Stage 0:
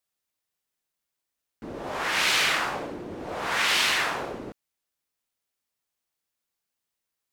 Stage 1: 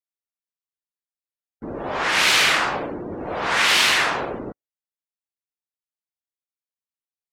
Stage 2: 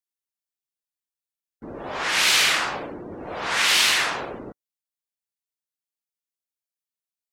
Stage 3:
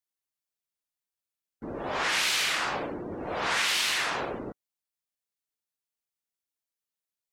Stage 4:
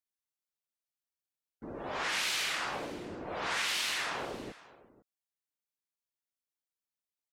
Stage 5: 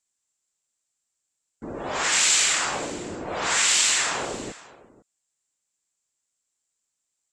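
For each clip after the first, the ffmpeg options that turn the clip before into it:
-af "afftdn=nr=23:nf=-48,volume=6dB"
-af "highshelf=f=2.9k:g=8,volume=-5.5dB"
-af "acompressor=threshold=-24dB:ratio=6"
-af "aecho=1:1:502:0.106,volume=-6dB"
-af "lowpass=f=7.5k:t=q:w=8,volume=8dB"

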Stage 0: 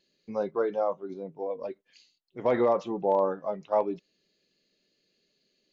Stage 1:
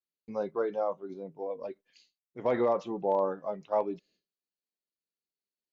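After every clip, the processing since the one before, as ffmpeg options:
-af "agate=range=-33dB:threshold=-57dB:ratio=3:detection=peak,volume=-3dB"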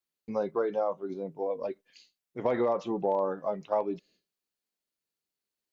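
-af "acompressor=threshold=-31dB:ratio=2.5,volume=5dB"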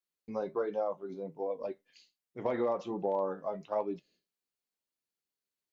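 -af "flanger=delay=9.7:depth=2.5:regen=-62:speed=1.3:shape=sinusoidal"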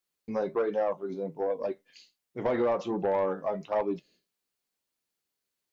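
-af "asoftclip=type=tanh:threshold=-26dB,volume=6.5dB"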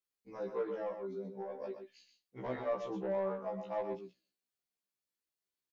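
-af "aecho=1:1:124:0.422,afftfilt=real='re*1.73*eq(mod(b,3),0)':imag='im*1.73*eq(mod(b,3),0)':win_size=2048:overlap=0.75,volume=-7.5dB"

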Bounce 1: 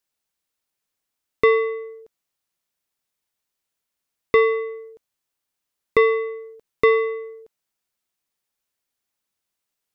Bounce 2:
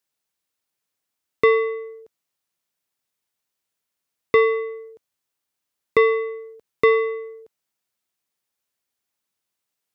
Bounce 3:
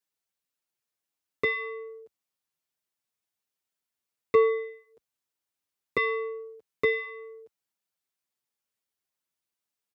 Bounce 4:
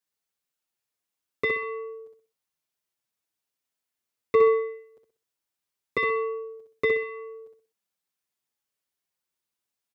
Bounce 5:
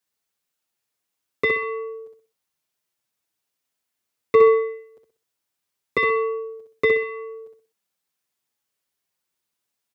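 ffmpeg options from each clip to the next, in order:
-af "highpass=67"
-filter_complex "[0:a]asplit=2[a][b];[b]adelay=6.8,afreqshift=-0.91[c];[a][c]amix=inputs=2:normalize=1,volume=-3.5dB"
-af "aecho=1:1:63|126|189|252:0.562|0.186|0.0612|0.0202"
-af "highpass=f=54:w=0.5412,highpass=f=54:w=1.3066,volume=5dB"

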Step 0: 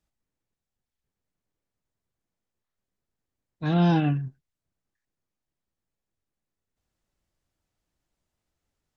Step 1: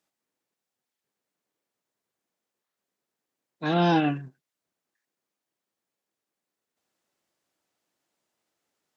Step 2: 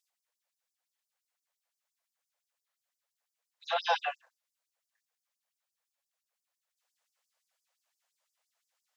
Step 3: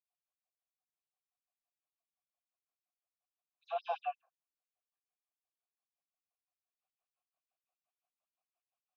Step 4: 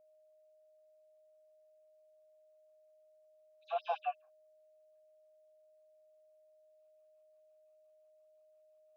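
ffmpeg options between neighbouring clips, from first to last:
-af "highpass=290,volume=4.5dB"
-af "afftfilt=real='re*gte(b*sr/1024,440*pow(4800/440,0.5+0.5*sin(2*PI*5.8*pts/sr)))':imag='im*gte(b*sr/1024,440*pow(4800/440,0.5+0.5*sin(2*PI*5.8*pts/sr)))':win_size=1024:overlap=0.75"
-filter_complex "[0:a]asplit=3[a][b][c];[a]bandpass=f=730:t=q:w=8,volume=0dB[d];[b]bandpass=f=1.09k:t=q:w=8,volume=-6dB[e];[c]bandpass=f=2.44k:t=q:w=8,volume=-9dB[f];[d][e][f]amix=inputs=3:normalize=0,volume=-1dB"
-af "aeval=exprs='val(0)+0.000562*sin(2*PI*620*n/s)':c=same,volume=1dB"

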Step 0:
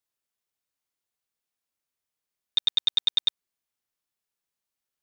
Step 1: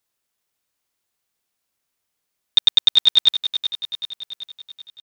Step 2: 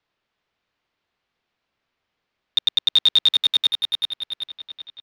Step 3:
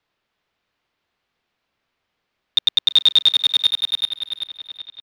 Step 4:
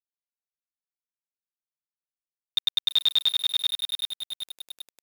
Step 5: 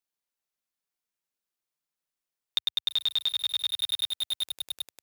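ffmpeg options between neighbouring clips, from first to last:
-af "aecho=1:1:383|766|1149|1532|1915|2298:0.316|0.177|0.0992|0.0555|0.0311|0.0174,volume=9dB"
-filter_complex "[0:a]acrossover=split=340|4200[a][b][c];[c]aeval=exprs='sgn(val(0))*max(abs(val(0))-0.01,0)':c=same[d];[a][b][d]amix=inputs=3:normalize=0,alimiter=limit=-15.5dB:level=0:latency=1:release=13,volume=6.5dB"
-af "aecho=1:1:337:0.106,volume=2.5dB"
-af "acrusher=bits=4:mix=0:aa=0.000001,volume=-8.5dB"
-af "equalizer=f=83:w=2.7:g=-11,acompressor=threshold=-31dB:ratio=6,volume=6dB"

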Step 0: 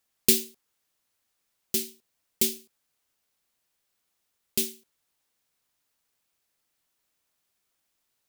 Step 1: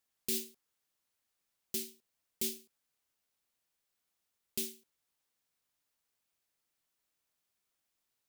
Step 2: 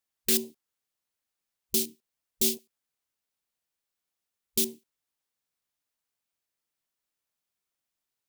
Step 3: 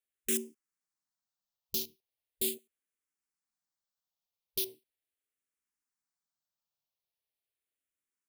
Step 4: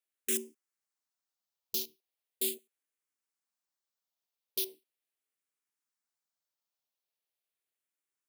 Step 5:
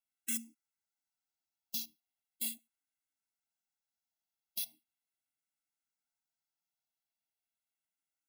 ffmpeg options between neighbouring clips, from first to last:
-af "alimiter=limit=-15.5dB:level=0:latency=1:release=54,volume=-6.5dB"
-af "aeval=exprs='0.0841*sin(PI/2*2*val(0)/0.0841)':c=same,afwtdn=0.01,volume=3.5dB"
-filter_complex "[0:a]asplit=2[a][b];[b]afreqshift=-0.39[c];[a][c]amix=inputs=2:normalize=1,volume=-4dB"
-af "highpass=270"
-af "afftfilt=real='re*eq(mod(floor(b*sr/1024/320),2),0)':imag='im*eq(mod(floor(b*sr/1024/320),2),0)':win_size=1024:overlap=0.75,volume=-1dB"

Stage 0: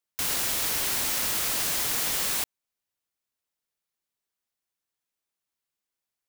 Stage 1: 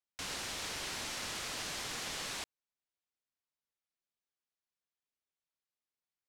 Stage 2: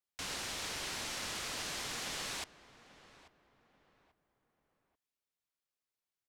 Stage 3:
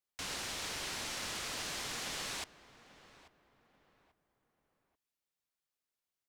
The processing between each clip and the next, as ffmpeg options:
-af "lowpass=6.2k,volume=-8dB"
-filter_complex "[0:a]asplit=2[a][b];[b]adelay=838,lowpass=f=1.7k:p=1,volume=-15.5dB,asplit=2[c][d];[d]adelay=838,lowpass=f=1.7k:p=1,volume=0.38,asplit=2[e][f];[f]adelay=838,lowpass=f=1.7k:p=1,volume=0.38[g];[a][c][e][g]amix=inputs=4:normalize=0"
-af "acrusher=bits=6:mode=log:mix=0:aa=0.000001"

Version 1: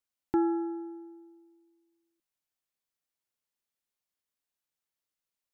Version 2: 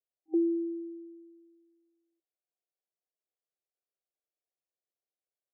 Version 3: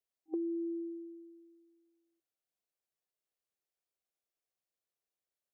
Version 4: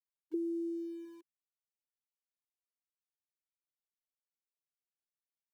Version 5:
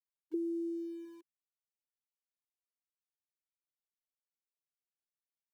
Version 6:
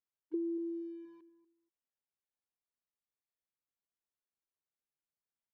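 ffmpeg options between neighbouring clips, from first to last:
-af "afftfilt=real='re*between(b*sr/4096,320,790)':imag='im*between(b*sr/4096,320,790)':win_size=4096:overlap=0.75"
-af "acompressor=threshold=-34dB:ratio=6"
-filter_complex "[0:a]afftfilt=real='re*gte(hypot(re,im),0.0355)':imag='im*gte(hypot(re,im),0.0355)':win_size=1024:overlap=0.75,acrossover=split=320|410[a][b][c];[a]aeval=exprs='val(0)*gte(abs(val(0)),0.00106)':c=same[d];[d][b][c]amix=inputs=3:normalize=0"
-af anull
-filter_complex "[0:a]adynamicsmooth=sensitivity=1.5:basefreq=2.3k,asplit=2[a][b];[b]adelay=239,lowpass=f=940:p=1,volume=-13dB,asplit=2[c][d];[d]adelay=239,lowpass=f=940:p=1,volume=0.17[e];[a][c][e]amix=inputs=3:normalize=0"

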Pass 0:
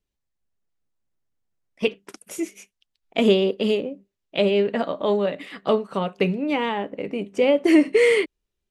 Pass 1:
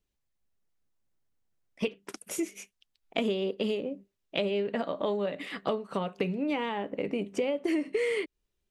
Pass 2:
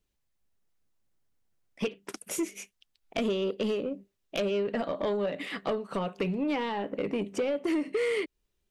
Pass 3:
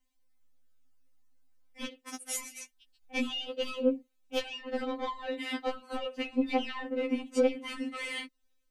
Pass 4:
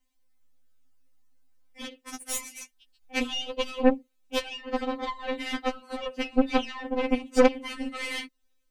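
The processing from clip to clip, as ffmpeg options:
-af "acompressor=threshold=-27dB:ratio=6"
-af "asoftclip=type=tanh:threshold=-24.5dB,volume=2.5dB"
-af "afftfilt=real='re*3.46*eq(mod(b,12),0)':imag='im*3.46*eq(mod(b,12),0)':win_size=2048:overlap=0.75,volume=3dB"
-af "aeval=exprs='0.2*(cos(1*acos(clip(val(0)/0.2,-1,1)))-cos(1*PI/2))+0.0316*(cos(3*acos(clip(val(0)/0.2,-1,1)))-cos(3*PI/2))+0.02*(cos(6*acos(clip(val(0)/0.2,-1,1)))-cos(6*PI/2))+0.00141*(cos(7*acos(clip(val(0)/0.2,-1,1)))-cos(7*PI/2))':c=same,volume=9dB"

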